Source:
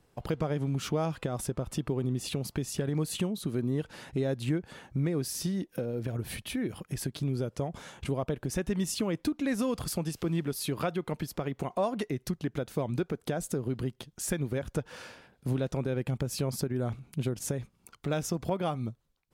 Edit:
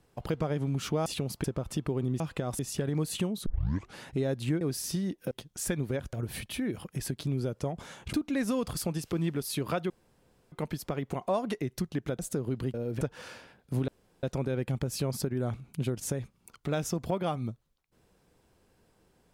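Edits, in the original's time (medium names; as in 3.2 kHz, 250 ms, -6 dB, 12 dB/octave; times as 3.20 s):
1.06–1.45 s: swap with 2.21–2.59 s
3.46 s: tape start 0.50 s
4.61–5.12 s: delete
5.82–6.09 s: swap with 13.93–14.75 s
8.09–9.24 s: delete
11.01 s: insert room tone 0.62 s
12.68–13.38 s: delete
15.62 s: insert room tone 0.35 s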